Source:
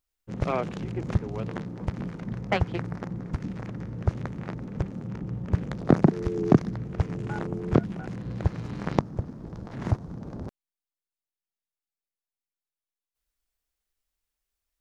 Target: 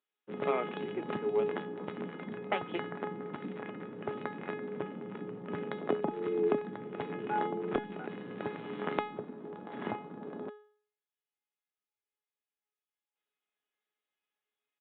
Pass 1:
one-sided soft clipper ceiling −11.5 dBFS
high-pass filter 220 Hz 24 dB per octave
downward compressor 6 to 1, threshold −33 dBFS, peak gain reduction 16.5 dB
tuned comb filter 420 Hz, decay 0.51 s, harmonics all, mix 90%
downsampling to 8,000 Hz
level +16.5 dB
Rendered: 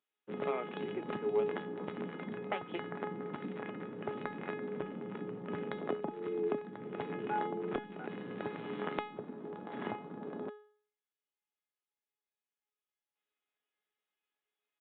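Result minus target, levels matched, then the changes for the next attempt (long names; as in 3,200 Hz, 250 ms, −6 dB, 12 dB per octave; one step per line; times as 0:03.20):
downward compressor: peak gain reduction +5.5 dB
change: downward compressor 6 to 1, threshold −26.5 dBFS, peak gain reduction 11 dB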